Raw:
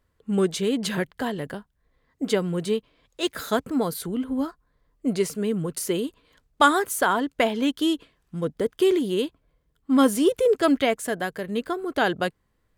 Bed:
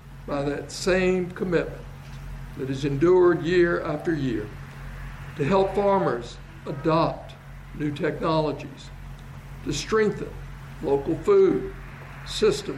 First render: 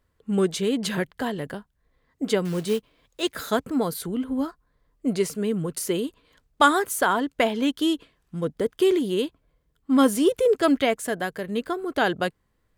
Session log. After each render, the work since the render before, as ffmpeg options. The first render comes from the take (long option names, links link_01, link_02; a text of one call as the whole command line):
ffmpeg -i in.wav -filter_complex "[0:a]asettb=1/sr,asplit=3[link_01][link_02][link_03];[link_01]atrim=end=2.454[link_04];[link_02]atrim=start=2.45:end=3.22,asetpts=PTS-STARTPTS,afade=type=in:duration=0.004:curve=qsin,afade=type=out:start_time=0.766:duration=0.004:curve=qsin,acrusher=bits=4:mode=log:mix=0:aa=0.000001[link_05];[link_03]atrim=start=3.216[link_06];[link_04][link_05]acrossfade=duration=0.004:curve1=hsin:curve2=qsin[link_07];[link_07][link_06]acrossfade=duration=0.004:curve1=qsin:curve2=hsin" out.wav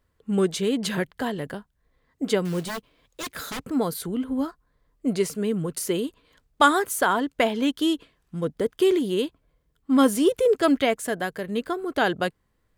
ffmpeg -i in.wav -filter_complex "[0:a]asettb=1/sr,asplit=3[link_01][link_02][link_03];[link_01]atrim=end=2.654[link_04];[link_02]atrim=start=2.65:end=3.62,asetpts=PTS-STARTPTS,afade=type=in:duration=0.004:curve=qsin,afade=type=out:start_time=0.966:duration=0.004:curve=qsin,aeval=exprs='0.0473*(abs(mod(val(0)/0.0473+3,4)-2)-1)':channel_layout=same[link_05];[link_03]atrim=start=3.616[link_06];[link_04][link_05]acrossfade=duration=0.004:curve1=hsin:curve2=qsin[link_07];[link_07][link_06]acrossfade=duration=0.004:curve1=qsin:curve2=hsin" out.wav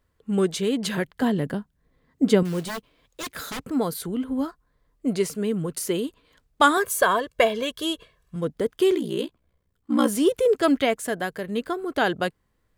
ffmpeg -i in.wav -filter_complex "[0:a]asettb=1/sr,asplit=3[link_01][link_02][link_03];[link_01]atrim=end=1.224[link_04];[link_02]atrim=start=1.22:end=2.43,asetpts=PTS-STARTPTS,afade=type=in:duration=0.004:curve=qsin,afade=type=out:start_time=1.206:duration=0.004:curve=qsin,equalizer=frequency=200:width_type=o:width=1.9:gain=9[link_05];[link_03]atrim=start=2.426[link_06];[link_04][link_05]acrossfade=duration=0.004:curve1=hsin:curve2=qsin[link_07];[link_07][link_06]acrossfade=duration=0.004:curve1=qsin:curve2=hsin,asettb=1/sr,asplit=3[link_08][link_09][link_10];[link_08]atrim=end=6.774[link_11];[link_09]atrim=start=6.77:end=8.36,asetpts=PTS-STARTPTS,afade=type=in:duration=0.004:curve=qsin,afade=type=out:start_time=1.586:duration=0.004:curve=qsin,aecho=1:1:1.8:0.75,atrim=end_sample=70119[link_12];[link_10]atrim=start=8.356[link_13];[link_11][link_12]acrossfade=duration=0.004:curve1=hsin:curve2=qsin[link_14];[link_14][link_13]acrossfade=duration=0.004:curve1=qsin:curve2=hsin,asplit=3[link_15][link_16][link_17];[link_15]afade=type=out:start_time=8.94:duration=0.02[link_18];[link_16]aeval=exprs='val(0)*sin(2*PI*30*n/s)':channel_layout=same,afade=type=in:start_time=8.94:duration=0.02,afade=type=out:start_time=10.06:duration=0.02[link_19];[link_17]afade=type=in:start_time=10.06:duration=0.02[link_20];[link_18][link_19][link_20]amix=inputs=3:normalize=0" out.wav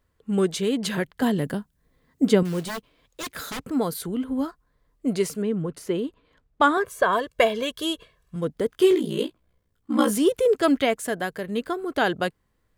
ffmpeg -i in.wav -filter_complex "[0:a]asettb=1/sr,asplit=3[link_01][link_02][link_03];[link_01]atrim=end=1.224[link_04];[link_02]atrim=start=1.22:end=2.29,asetpts=PTS-STARTPTS,afade=type=in:duration=0.004:curve=qsin,afade=type=out:start_time=1.066:duration=0.004:curve=qsin,highshelf=frequency=5100:gain=8[link_05];[link_03]atrim=start=2.286[link_06];[link_04][link_05]acrossfade=duration=0.004:curve1=hsin:curve2=qsin[link_07];[link_07][link_06]acrossfade=duration=0.004:curve1=qsin:curve2=hsin,asettb=1/sr,asplit=3[link_08][link_09][link_10];[link_08]atrim=end=5.424[link_11];[link_09]atrim=start=5.42:end=7.13,asetpts=PTS-STARTPTS,afade=type=in:duration=0.004:curve=qsin,afade=type=out:start_time=1.706:duration=0.004:curve=qsin,lowpass=frequency=1800:poles=1[link_12];[link_10]atrim=start=7.126[link_13];[link_11][link_12]acrossfade=duration=0.004:curve1=hsin:curve2=qsin[link_14];[link_14][link_13]acrossfade=duration=0.004:curve1=qsin:curve2=hsin,asettb=1/sr,asplit=3[link_15][link_16][link_17];[link_15]atrim=end=8.704[link_18];[link_16]atrim=start=8.7:end=10.18,asetpts=PTS-STARTPTS,afade=type=in:duration=0.004:curve=qsin,afade=type=out:start_time=1.476:duration=0.004:curve=qsin,asplit=2[link_19][link_20];[link_20]adelay=19,volume=-4.5dB[link_21];[link_19][link_21]amix=inputs=2:normalize=0,atrim=end_sample=65268[link_22];[link_17]atrim=start=10.176[link_23];[link_18][link_22]acrossfade=duration=0.004:curve1=hsin:curve2=qsin[link_24];[link_24][link_23]acrossfade=duration=0.004:curve1=qsin:curve2=hsin" out.wav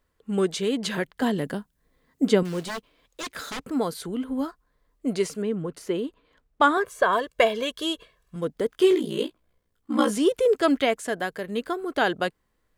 ffmpeg -i in.wav -filter_complex "[0:a]acrossover=split=9200[link_01][link_02];[link_02]acompressor=threshold=-52dB:ratio=4:attack=1:release=60[link_03];[link_01][link_03]amix=inputs=2:normalize=0,equalizer=frequency=100:width=0.75:gain=-7" out.wav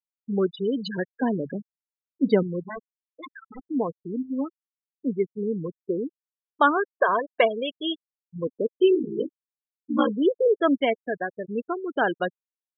ffmpeg -i in.wav -af "bandreject=frequency=50:width_type=h:width=6,bandreject=frequency=100:width_type=h:width=6,bandreject=frequency=150:width_type=h:width=6,afftfilt=real='re*gte(hypot(re,im),0.1)':imag='im*gte(hypot(re,im),0.1)':win_size=1024:overlap=0.75" out.wav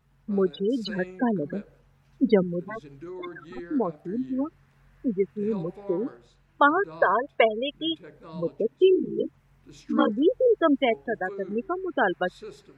ffmpeg -i in.wav -i bed.wav -filter_complex "[1:a]volume=-21dB[link_01];[0:a][link_01]amix=inputs=2:normalize=0" out.wav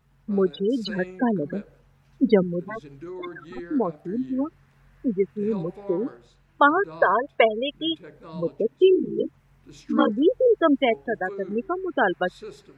ffmpeg -i in.wav -af "volume=2dB" out.wav